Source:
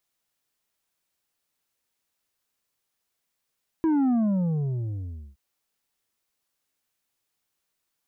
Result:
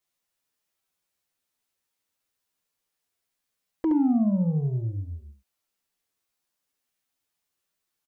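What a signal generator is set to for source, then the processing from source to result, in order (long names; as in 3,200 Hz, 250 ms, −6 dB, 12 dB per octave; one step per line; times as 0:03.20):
bass drop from 330 Hz, over 1.52 s, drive 6 dB, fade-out 1.26 s, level −20 dB
flanger swept by the level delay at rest 11.6 ms, full sweep at −27 dBFS
on a send: single-tap delay 70 ms −6 dB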